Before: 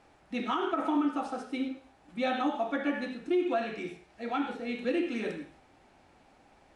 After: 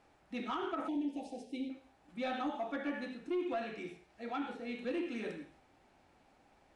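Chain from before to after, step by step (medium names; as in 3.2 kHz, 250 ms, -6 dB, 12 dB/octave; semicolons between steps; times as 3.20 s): saturation -22 dBFS, distortion -20 dB; 0.88–1.70 s: Butterworth band-stop 1.3 kHz, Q 0.72; trim -6 dB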